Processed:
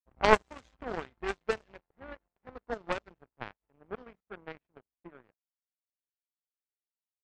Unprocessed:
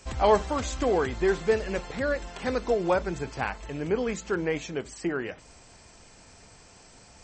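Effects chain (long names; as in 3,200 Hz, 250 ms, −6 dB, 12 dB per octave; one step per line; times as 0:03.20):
power curve on the samples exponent 3
low-pass that shuts in the quiet parts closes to 1,100 Hz, open at −34.5 dBFS
level +7 dB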